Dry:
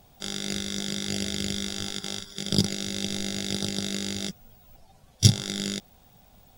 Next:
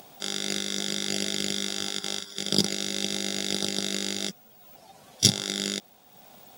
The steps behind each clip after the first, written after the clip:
high-pass filter 250 Hz 12 dB per octave
upward compression, threshold −45 dBFS
level +2.5 dB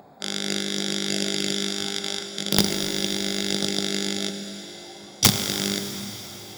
adaptive Wiener filter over 15 samples
wrap-around overflow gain 7.5 dB
dense smooth reverb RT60 4.6 s, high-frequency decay 0.95×, DRR 5.5 dB
level +3.5 dB

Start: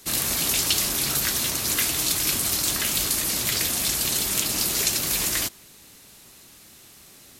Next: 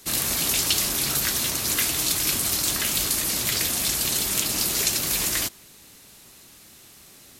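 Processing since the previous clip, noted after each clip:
no processing that can be heard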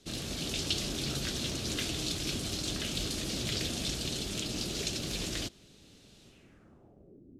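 automatic gain control gain up to 3.5 dB
graphic EQ with 10 bands 1,000 Hz −12 dB, 2,000 Hz −10 dB, 4,000 Hz −11 dB
low-pass filter sweep 3,800 Hz → 310 Hz, 0:06.25–0:07.25
level −3.5 dB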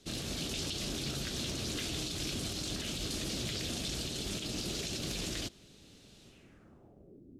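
brickwall limiter −27 dBFS, peak gain reduction 10 dB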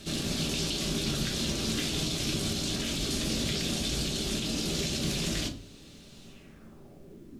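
background noise pink −72 dBFS
echo ahead of the sound 87 ms −14.5 dB
rectangular room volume 250 cubic metres, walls furnished, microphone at 1.2 metres
level +4 dB

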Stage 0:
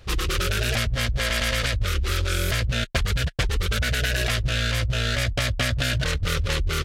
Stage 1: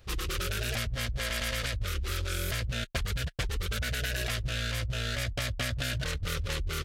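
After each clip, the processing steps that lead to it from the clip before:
high-shelf EQ 11,000 Hz +7.5 dB
level −8.5 dB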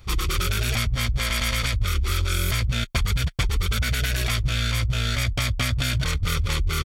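comb filter 0.9 ms, depth 47%
level +6.5 dB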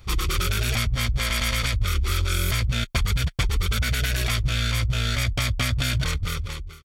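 fade-out on the ending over 0.81 s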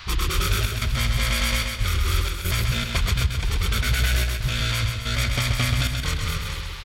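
noise in a band 880–4,600 Hz −42 dBFS
gate pattern "xxxx.xxxxx.xxx.x" 92 BPM −12 dB
repeating echo 131 ms, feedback 50%, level −5 dB

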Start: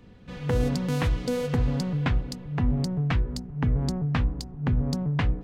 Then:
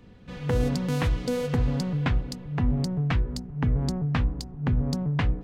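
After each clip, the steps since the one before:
no processing that can be heard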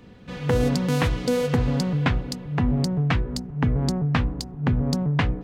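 low-shelf EQ 80 Hz −9 dB
level +5.5 dB

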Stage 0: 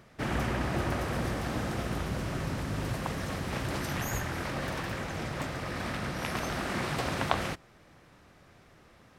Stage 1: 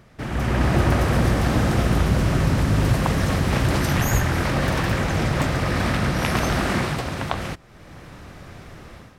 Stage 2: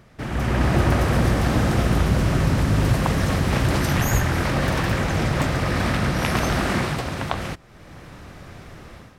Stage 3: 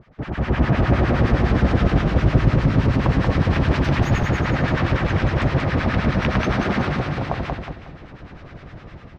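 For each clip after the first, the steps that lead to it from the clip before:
in parallel at −1 dB: downward compressor, threshold −42 dBFS, peak gain reduction 19.5 dB; on the sum: low-shelf EQ 160 Hz +7 dB; automatic gain control gain up to 12 dB; level −3 dB
no processing that can be heard
two-band tremolo in antiphase 9.7 Hz, depth 100%, crossover 980 Hz; high-frequency loss of the air 210 metres; on a send: repeating echo 183 ms, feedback 37%, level −3.5 dB; on the sum: level +5 dB

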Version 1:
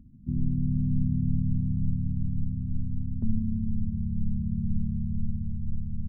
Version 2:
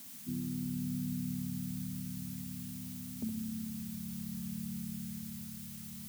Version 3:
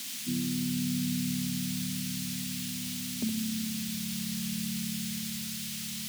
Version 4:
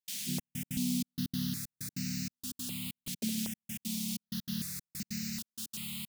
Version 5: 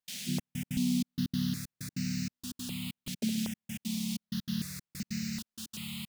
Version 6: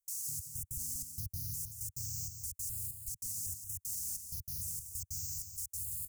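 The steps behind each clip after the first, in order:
high-pass filter 320 Hz 12 dB per octave; background noise blue −52 dBFS; flutter between parallel walls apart 11.3 metres, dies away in 0.46 s; level +2 dB
meter weighting curve D; level +8 dB
gate pattern ".xxxx..x" 191 BPM −60 dB; step-sequenced phaser 2.6 Hz 290–3,300 Hz
high-shelf EQ 6,200 Hz −10 dB; level +3.5 dB
inverse Chebyshev band-stop filter 180–3,700 Hz, stop band 40 dB; brickwall limiter −38.5 dBFS, peak gain reduction 8.5 dB; single-tap delay 178 ms −8 dB; level +9 dB

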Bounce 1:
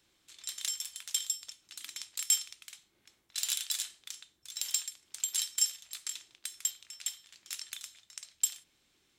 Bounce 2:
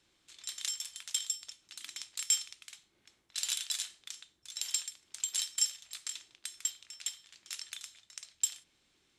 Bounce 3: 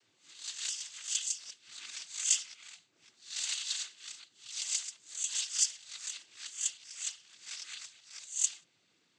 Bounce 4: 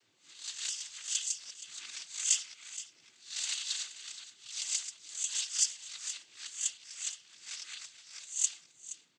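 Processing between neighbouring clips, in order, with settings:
Bessel low-pass filter 9,600 Hz, order 4
peak hold with a rise ahead of every peak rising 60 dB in 0.36 s; cochlear-implant simulation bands 16; level −1 dB
single-tap delay 472 ms −14.5 dB

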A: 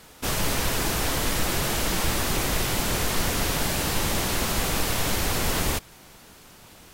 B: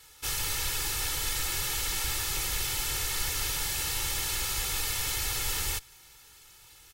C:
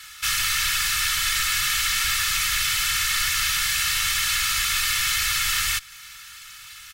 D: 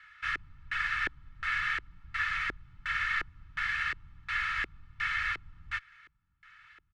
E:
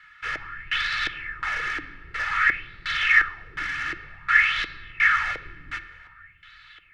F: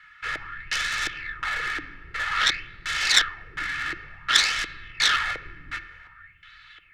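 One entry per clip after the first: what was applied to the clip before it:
guitar amp tone stack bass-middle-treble 5-5-5; comb filter 2.3 ms, depth 79%; level +2 dB
drawn EQ curve 200 Hz 0 dB, 420 Hz −26 dB, 1,100 Hz +13 dB, 1,900 Hz +14 dB, 13,000 Hz +5 dB; in parallel at −0.5 dB: downward compressor, threshold −32 dBFS, peak gain reduction 12 dB; on the sum: flat-topped bell 580 Hz −10 dB; level −2.5 dB
auto-filter low-pass square 1.4 Hz 350–1,800 Hz; expander for the loud parts 1.5 to 1, over −33 dBFS; level −7.5 dB
soft clipping −25.5 dBFS, distortion −18 dB; on a send at −8 dB: convolution reverb RT60 1.8 s, pre-delay 6 ms; on the sum: auto-filter bell 0.53 Hz 280–4,100 Hz +16 dB; level +3.5 dB
phase distortion by the signal itself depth 0.28 ms

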